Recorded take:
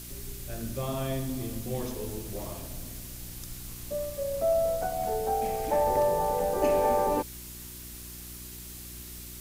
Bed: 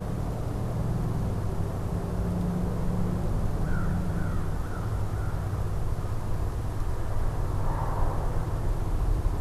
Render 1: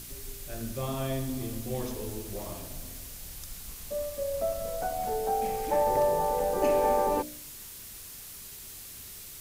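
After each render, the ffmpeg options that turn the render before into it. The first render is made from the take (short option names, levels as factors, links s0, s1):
-af "bandreject=f=60:t=h:w=4,bandreject=f=120:t=h:w=4,bandreject=f=180:t=h:w=4,bandreject=f=240:t=h:w=4,bandreject=f=300:t=h:w=4,bandreject=f=360:t=h:w=4,bandreject=f=420:t=h:w=4,bandreject=f=480:t=h:w=4,bandreject=f=540:t=h:w=4,bandreject=f=600:t=h:w=4,bandreject=f=660:t=h:w=4"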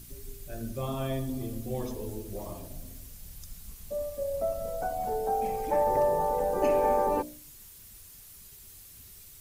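-af "afftdn=nr=9:nf=-45"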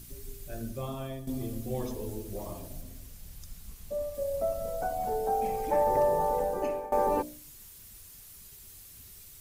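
-filter_complex "[0:a]asettb=1/sr,asplit=3[s0][s1][s2];[s0]atrim=end=2.814[s3];[s1]atrim=start=2.81:end=4.15,asetpts=PTS-STARTPTS,afade=t=in:d=0.004:c=qsin,afade=t=out:st=1.336:d=0.004:c=qsin,highshelf=f=5300:g=-4[s4];[s2]atrim=start=4.146[s5];[s3][s4]acrossfade=d=0.004:c1=hsin:c2=qsin[s6];[s6][s5]acrossfade=d=0.004:c1=qsin:c2=hsin,asplit=3[s7][s8][s9];[s7]atrim=end=1.27,asetpts=PTS-STARTPTS,afade=t=out:st=0.56:d=0.71:silence=0.298538[s10];[s8]atrim=start=1.27:end=6.92,asetpts=PTS-STARTPTS,afade=t=in:d=0.004:c=hsin:silence=0.298538,afade=t=out:st=5.09:d=0.56:silence=0.0841395[s11];[s9]atrim=start=6.92,asetpts=PTS-STARTPTS,afade=t=in:d=0.004:c=hsin:silence=0.0841395[s12];[s10][s11][s12]concat=n=3:v=0:a=1"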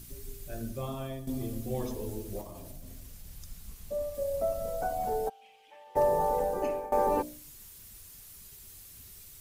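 -filter_complex "[0:a]asettb=1/sr,asplit=3[s0][s1][s2];[s0]atrim=end=2.414[s3];[s1]atrim=start=2.41:end=3.31,asetpts=PTS-STARTPTS,afade=t=in:d=0.004:c=qsin,afade=t=out:st=0.896:d=0.004:c=qsin,acompressor=threshold=0.01:ratio=6:attack=3.2:release=140:knee=1:detection=peak[s4];[s2]atrim=start=3.306[s5];[s3][s4]acrossfade=d=0.004:c1=hsin:c2=qsin[s6];[s6][s5]acrossfade=d=0.004:c1=qsin:c2=hsin,asplit=3[s7][s8][s9];[s7]afade=t=out:st=5.28:d=0.02[s10];[s8]bandpass=f=3000:t=q:w=6,afade=t=in:st=5.28:d=0.02,afade=t=out:st=5.95:d=0.02[s11];[s9]afade=t=in:st=5.95:d=0.02[s12];[s10][s11][s12]amix=inputs=3:normalize=0"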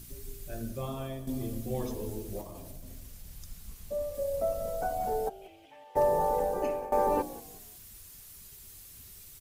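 -filter_complex "[0:a]asplit=4[s0][s1][s2][s3];[s1]adelay=184,afreqshift=-54,volume=0.119[s4];[s2]adelay=368,afreqshift=-108,volume=0.0427[s5];[s3]adelay=552,afreqshift=-162,volume=0.0155[s6];[s0][s4][s5][s6]amix=inputs=4:normalize=0"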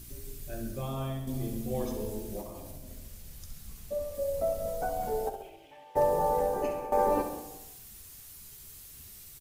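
-filter_complex "[0:a]asplit=2[s0][s1];[s1]adelay=14,volume=0.282[s2];[s0][s2]amix=inputs=2:normalize=0,aecho=1:1:67|134|201|268|335|402|469:0.376|0.207|0.114|0.0625|0.0344|0.0189|0.0104"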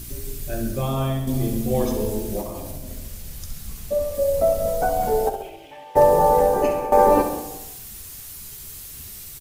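-af "volume=3.55"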